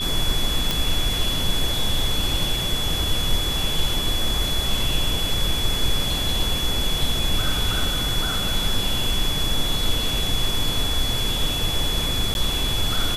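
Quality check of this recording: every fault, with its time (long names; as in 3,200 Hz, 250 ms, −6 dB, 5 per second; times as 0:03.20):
whistle 3,400 Hz −25 dBFS
0:00.71: click
0:12.34–0:12.35: drop-out 11 ms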